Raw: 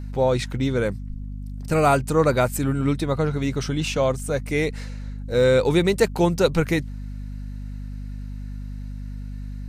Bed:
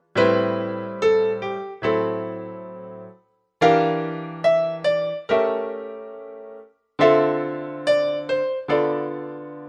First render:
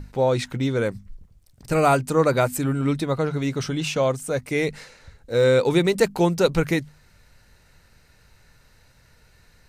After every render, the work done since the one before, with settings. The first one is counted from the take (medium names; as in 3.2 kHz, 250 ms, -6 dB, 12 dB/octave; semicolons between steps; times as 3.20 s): hum notches 50/100/150/200/250 Hz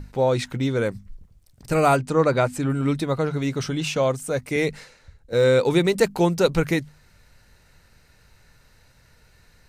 1.96–2.70 s: distance through air 57 m; 4.56–5.33 s: three bands expanded up and down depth 40%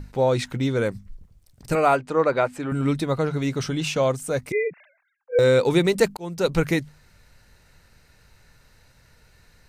1.75–2.72 s: tone controls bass -11 dB, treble -10 dB; 4.52–5.39 s: formants replaced by sine waves; 6.17–6.57 s: fade in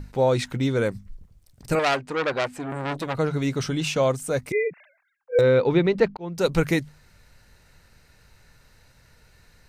1.79–3.15 s: transformer saturation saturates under 2.6 kHz; 5.41–6.35 s: distance through air 260 m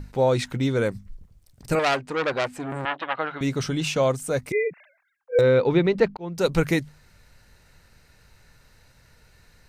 2.85–3.41 s: cabinet simulation 440–3400 Hz, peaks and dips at 440 Hz -8 dB, 810 Hz +4 dB, 1.2 kHz +4 dB, 1.7 kHz +7 dB, 3 kHz +8 dB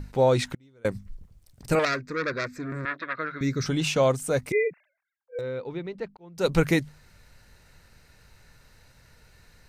0.43–0.85 s: inverted gate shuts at -21 dBFS, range -33 dB; 1.85–3.66 s: static phaser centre 3 kHz, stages 6; 4.65–6.49 s: dip -14.5 dB, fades 0.16 s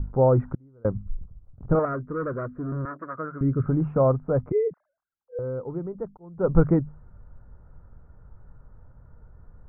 elliptic low-pass 1.3 kHz, stop band 70 dB; bass shelf 150 Hz +11.5 dB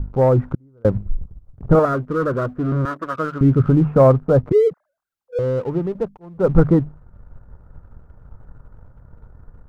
waveshaping leveller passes 1; level rider gain up to 6 dB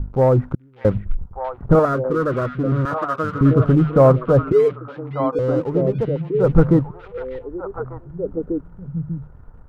repeats whose band climbs or falls 596 ms, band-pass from 2.6 kHz, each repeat -1.4 oct, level 0 dB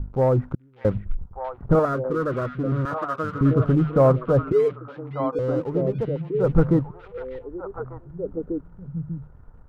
trim -4.5 dB